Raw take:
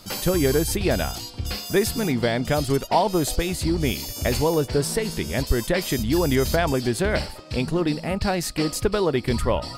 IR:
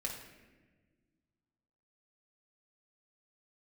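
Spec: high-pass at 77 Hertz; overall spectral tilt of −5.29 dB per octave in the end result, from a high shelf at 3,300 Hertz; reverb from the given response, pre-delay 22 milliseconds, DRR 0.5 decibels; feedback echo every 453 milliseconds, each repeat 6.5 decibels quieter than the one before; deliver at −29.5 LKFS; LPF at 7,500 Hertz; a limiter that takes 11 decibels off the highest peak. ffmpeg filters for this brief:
-filter_complex "[0:a]highpass=77,lowpass=7500,highshelf=frequency=3300:gain=-3.5,alimiter=limit=-17.5dB:level=0:latency=1,aecho=1:1:453|906|1359|1812|2265|2718:0.473|0.222|0.105|0.0491|0.0231|0.0109,asplit=2[link_01][link_02];[1:a]atrim=start_sample=2205,adelay=22[link_03];[link_02][link_03]afir=irnorm=-1:irlink=0,volume=-1.5dB[link_04];[link_01][link_04]amix=inputs=2:normalize=0,volume=-5.5dB"

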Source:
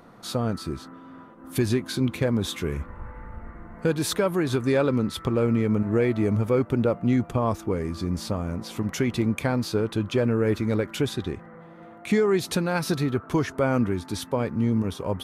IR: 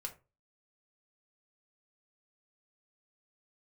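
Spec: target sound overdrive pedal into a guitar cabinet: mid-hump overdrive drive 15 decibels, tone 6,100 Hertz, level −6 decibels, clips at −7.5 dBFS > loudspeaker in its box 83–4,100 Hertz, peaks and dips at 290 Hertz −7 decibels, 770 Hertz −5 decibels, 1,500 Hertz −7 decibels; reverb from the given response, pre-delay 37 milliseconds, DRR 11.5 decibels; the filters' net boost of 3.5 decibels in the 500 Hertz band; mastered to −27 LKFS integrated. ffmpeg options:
-filter_complex "[0:a]equalizer=frequency=500:width_type=o:gain=5.5,asplit=2[link_01][link_02];[1:a]atrim=start_sample=2205,adelay=37[link_03];[link_02][link_03]afir=irnorm=-1:irlink=0,volume=-9.5dB[link_04];[link_01][link_04]amix=inputs=2:normalize=0,asplit=2[link_05][link_06];[link_06]highpass=frequency=720:poles=1,volume=15dB,asoftclip=type=tanh:threshold=-7.5dB[link_07];[link_05][link_07]amix=inputs=2:normalize=0,lowpass=frequency=6100:poles=1,volume=-6dB,highpass=83,equalizer=frequency=290:width_type=q:width=4:gain=-7,equalizer=frequency=770:width_type=q:width=4:gain=-5,equalizer=frequency=1500:width_type=q:width=4:gain=-7,lowpass=frequency=4100:width=0.5412,lowpass=frequency=4100:width=1.3066,volume=-5dB"

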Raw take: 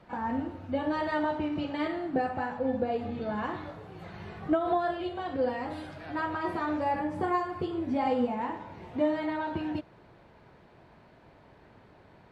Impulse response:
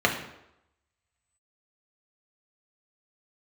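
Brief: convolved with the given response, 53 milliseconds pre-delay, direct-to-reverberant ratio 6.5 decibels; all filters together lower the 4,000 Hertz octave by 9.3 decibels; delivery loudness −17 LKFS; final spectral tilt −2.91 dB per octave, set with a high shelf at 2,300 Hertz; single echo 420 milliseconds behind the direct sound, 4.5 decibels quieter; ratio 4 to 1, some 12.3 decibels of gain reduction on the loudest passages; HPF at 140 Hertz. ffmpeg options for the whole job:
-filter_complex "[0:a]highpass=140,highshelf=frequency=2300:gain=-7.5,equalizer=frequency=4000:width_type=o:gain=-6.5,acompressor=threshold=-38dB:ratio=4,aecho=1:1:420:0.596,asplit=2[link_01][link_02];[1:a]atrim=start_sample=2205,adelay=53[link_03];[link_02][link_03]afir=irnorm=-1:irlink=0,volume=-22.5dB[link_04];[link_01][link_04]amix=inputs=2:normalize=0,volume=21.5dB"

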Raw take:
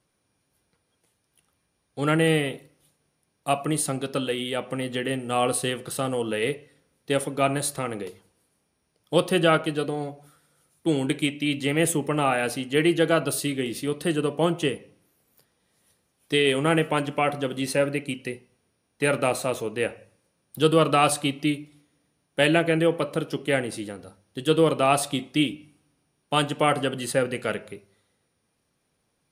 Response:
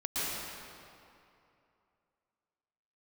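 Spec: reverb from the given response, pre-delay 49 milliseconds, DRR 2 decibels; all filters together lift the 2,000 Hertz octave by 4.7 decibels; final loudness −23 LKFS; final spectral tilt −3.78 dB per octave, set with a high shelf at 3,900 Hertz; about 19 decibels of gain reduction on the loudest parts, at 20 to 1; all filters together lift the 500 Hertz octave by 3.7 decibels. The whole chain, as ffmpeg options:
-filter_complex "[0:a]equalizer=frequency=500:width_type=o:gain=4,equalizer=frequency=2000:width_type=o:gain=4,highshelf=frequency=3900:gain=6.5,acompressor=threshold=-30dB:ratio=20,asplit=2[link_01][link_02];[1:a]atrim=start_sample=2205,adelay=49[link_03];[link_02][link_03]afir=irnorm=-1:irlink=0,volume=-9.5dB[link_04];[link_01][link_04]amix=inputs=2:normalize=0,volume=11dB"

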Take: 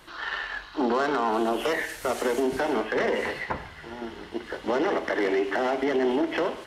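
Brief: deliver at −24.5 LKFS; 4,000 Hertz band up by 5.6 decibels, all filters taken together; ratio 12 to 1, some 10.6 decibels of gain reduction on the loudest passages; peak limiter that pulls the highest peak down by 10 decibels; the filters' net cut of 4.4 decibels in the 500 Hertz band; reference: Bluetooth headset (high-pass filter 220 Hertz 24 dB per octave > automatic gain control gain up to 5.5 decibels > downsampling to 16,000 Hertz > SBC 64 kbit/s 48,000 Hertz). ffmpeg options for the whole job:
ffmpeg -i in.wav -af "equalizer=frequency=500:width_type=o:gain=-6,equalizer=frequency=4000:width_type=o:gain=8,acompressor=threshold=-34dB:ratio=12,alimiter=level_in=6.5dB:limit=-24dB:level=0:latency=1,volume=-6.5dB,highpass=frequency=220:width=0.5412,highpass=frequency=220:width=1.3066,dynaudnorm=maxgain=5.5dB,aresample=16000,aresample=44100,volume=15.5dB" -ar 48000 -c:a sbc -b:a 64k out.sbc

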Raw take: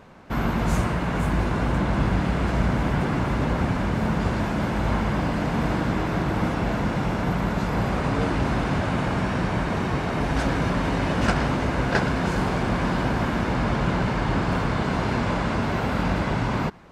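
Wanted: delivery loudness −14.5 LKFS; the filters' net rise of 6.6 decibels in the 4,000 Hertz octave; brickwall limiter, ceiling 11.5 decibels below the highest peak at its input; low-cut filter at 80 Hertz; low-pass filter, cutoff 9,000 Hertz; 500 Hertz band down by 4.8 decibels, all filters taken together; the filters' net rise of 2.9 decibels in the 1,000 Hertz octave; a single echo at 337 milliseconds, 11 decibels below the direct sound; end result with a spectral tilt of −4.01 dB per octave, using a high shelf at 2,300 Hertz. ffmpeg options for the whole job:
ffmpeg -i in.wav -af "highpass=80,lowpass=9000,equalizer=frequency=500:width_type=o:gain=-8.5,equalizer=frequency=1000:width_type=o:gain=5,highshelf=frequency=2300:gain=4,equalizer=frequency=4000:width_type=o:gain=5,alimiter=limit=-16.5dB:level=0:latency=1,aecho=1:1:337:0.282,volume=11dB" out.wav

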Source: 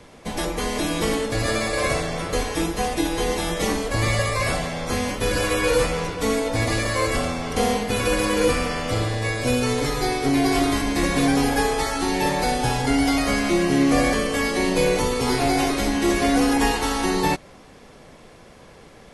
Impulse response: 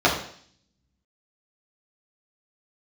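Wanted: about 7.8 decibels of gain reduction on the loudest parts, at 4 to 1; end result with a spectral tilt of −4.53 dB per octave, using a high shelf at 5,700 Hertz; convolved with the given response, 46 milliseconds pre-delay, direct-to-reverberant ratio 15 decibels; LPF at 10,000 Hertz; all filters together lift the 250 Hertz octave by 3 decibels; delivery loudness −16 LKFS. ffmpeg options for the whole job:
-filter_complex "[0:a]lowpass=10000,equalizer=frequency=250:width_type=o:gain=3.5,highshelf=frequency=5700:gain=3,acompressor=threshold=-22dB:ratio=4,asplit=2[link_01][link_02];[1:a]atrim=start_sample=2205,adelay=46[link_03];[link_02][link_03]afir=irnorm=-1:irlink=0,volume=-35dB[link_04];[link_01][link_04]amix=inputs=2:normalize=0,volume=9dB"

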